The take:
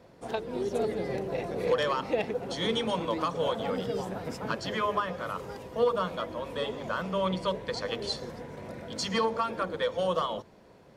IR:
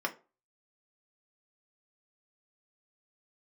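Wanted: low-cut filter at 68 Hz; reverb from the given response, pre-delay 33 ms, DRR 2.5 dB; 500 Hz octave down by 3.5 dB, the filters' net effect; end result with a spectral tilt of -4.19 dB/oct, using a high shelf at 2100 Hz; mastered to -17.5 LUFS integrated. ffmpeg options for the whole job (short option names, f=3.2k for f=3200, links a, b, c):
-filter_complex "[0:a]highpass=68,equalizer=f=500:t=o:g=-3.5,highshelf=f=2.1k:g=-7.5,asplit=2[a][b];[1:a]atrim=start_sample=2205,adelay=33[c];[b][c]afir=irnorm=-1:irlink=0,volume=-8.5dB[d];[a][d]amix=inputs=2:normalize=0,volume=14.5dB"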